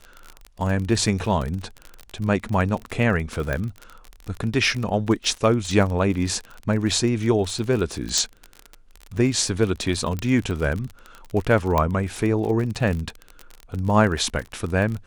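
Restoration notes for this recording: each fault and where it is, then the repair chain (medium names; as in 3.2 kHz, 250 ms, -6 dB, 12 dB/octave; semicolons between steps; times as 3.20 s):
crackle 37 per s -27 dBFS
3.53 s: pop -13 dBFS
8.18 s: pop
10.19 s: pop -15 dBFS
11.78 s: pop -8 dBFS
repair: de-click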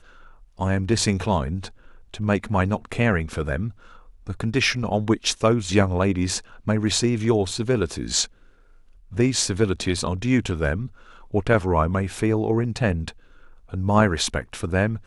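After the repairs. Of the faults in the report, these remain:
3.53 s: pop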